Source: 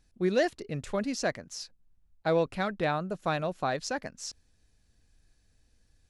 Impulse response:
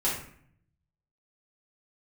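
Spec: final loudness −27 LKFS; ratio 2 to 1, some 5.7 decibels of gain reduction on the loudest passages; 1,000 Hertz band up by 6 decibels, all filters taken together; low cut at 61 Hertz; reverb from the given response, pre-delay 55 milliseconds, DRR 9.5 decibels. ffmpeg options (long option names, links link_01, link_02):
-filter_complex "[0:a]highpass=61,equalizer=frequency=1000:width_type=o:gain=8.5,acompressor=threshold=-29dB:ratio=2,asplit=2[link_01][link_02];[1:a]atrim=start_sample=2205,adelay=55[link_03];[link_02][link_03]afir=irnorm=-1:irlink=0,volume=-18.5dB[link_04];[link_01][link_04]amix=inputs=2:normalize=0,volume=5.5dB"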